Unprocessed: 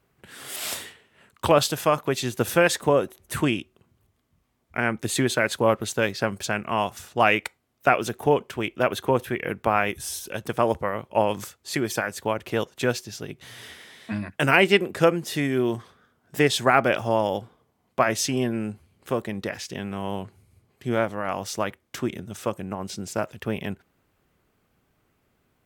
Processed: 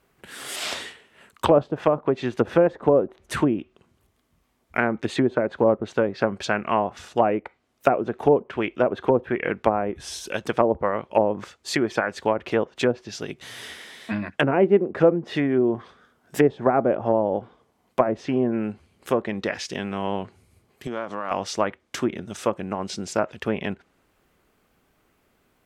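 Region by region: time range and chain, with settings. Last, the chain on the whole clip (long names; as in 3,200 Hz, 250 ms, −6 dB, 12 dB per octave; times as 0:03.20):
0:20.87–0:21.31: downward compressor, threshold −29 dBFS + loudspeaker in its box 130–10,000 Hz, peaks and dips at 1,100 Hz +6 dB, 2,100 Hz −4 dB, 8,700 Hz −7 dB
whole clip: treble cut that deepens with the level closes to 610 Hz, closed at −18.5 dBFS; parametric band 110 Hz −7.5 dB 1.3 octaves; level +4.5 dB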